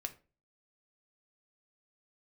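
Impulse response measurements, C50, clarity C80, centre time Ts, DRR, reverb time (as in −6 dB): 16.0 dB, 21.5 dB, 5 ms, 6.0 dB, 0.35 s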